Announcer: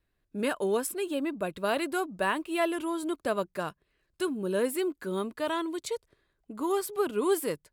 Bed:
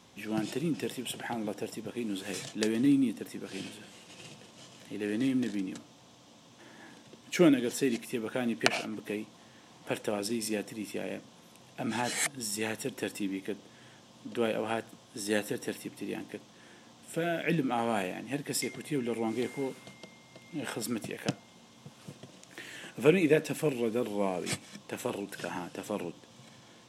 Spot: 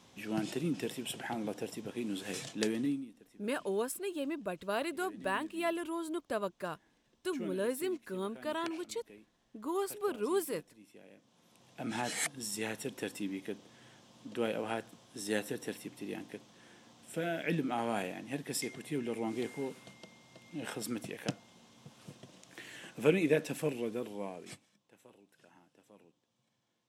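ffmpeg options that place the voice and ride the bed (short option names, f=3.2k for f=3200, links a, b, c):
-filter_complex "[0:a]adelay=3050,volume=-6dB[a];[1:a]volume=13.5dB,afade=t=out:st=2.64:d=0.42:silence=0.133352,afade=t=in:st=11.16:d=0.79:silence=0.158489,afade=t=out:st=23.61:d=1.14:silence=0.0841395[b];[a][b]amix=inputs=2:normalize=0"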